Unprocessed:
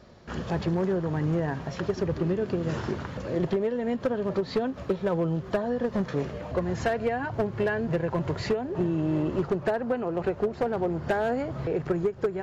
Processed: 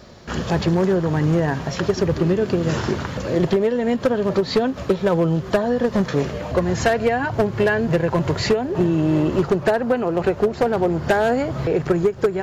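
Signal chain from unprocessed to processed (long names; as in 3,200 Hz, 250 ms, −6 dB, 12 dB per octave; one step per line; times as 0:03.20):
high-shelf EQ 3,700 Hz +8 dB
level +8 dB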